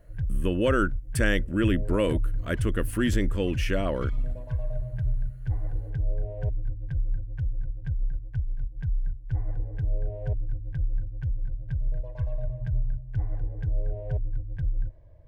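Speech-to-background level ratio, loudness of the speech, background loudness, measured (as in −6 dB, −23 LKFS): 5.0 dB, −28.0 LKFS, −33.0 LKFS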